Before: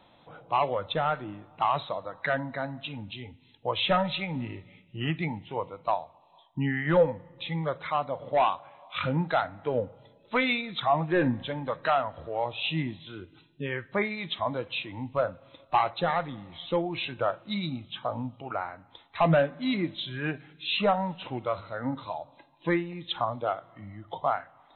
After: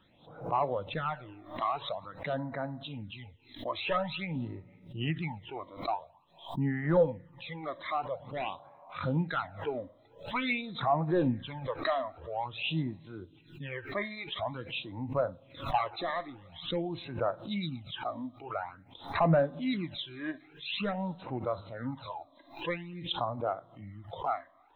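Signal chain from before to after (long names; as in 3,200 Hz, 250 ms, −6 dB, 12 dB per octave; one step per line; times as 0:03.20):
all-pass phaser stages 12, 0.48 Hz, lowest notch 140–3,300 Hz
background raised ahead of every attack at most 130 dB per second
level −3 dB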